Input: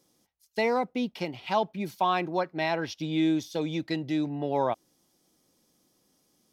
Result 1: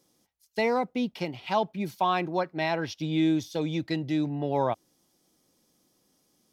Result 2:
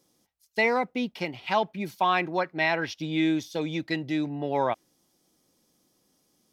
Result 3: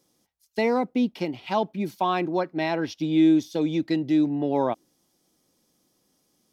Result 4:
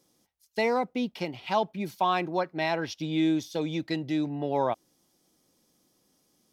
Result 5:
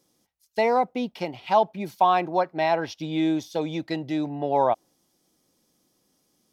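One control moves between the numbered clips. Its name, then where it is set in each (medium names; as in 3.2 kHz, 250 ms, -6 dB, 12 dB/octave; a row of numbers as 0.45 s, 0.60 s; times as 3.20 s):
dynamic bell, frequency: 100 Hz, 2 kHz, 280 Hz, 8.2 kHz, 750 Hz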